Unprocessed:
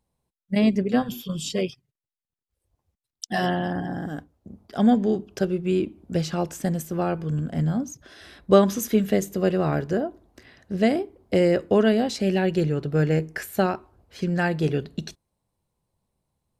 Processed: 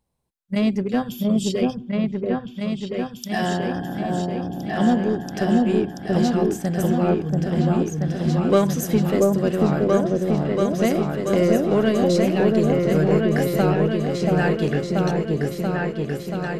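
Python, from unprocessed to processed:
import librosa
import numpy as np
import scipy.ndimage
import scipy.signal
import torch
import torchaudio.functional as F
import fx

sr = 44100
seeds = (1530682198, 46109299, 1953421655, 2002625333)

p1 = np.clip(x, -10.0 ** (-19.5 / 20.0), 10.0 ** (-19.5 / 20.0))
p2 = x + F.gain(torch.from_numpy(p1), -4.5).numpy()
p3 = fx.echo_opening(p2, sr, ms=683, hz=750, octaves=2, feedback_pct=70, wet_db=0)
y = F.gain(torch.from_numpy(p3), -3.5).numpy()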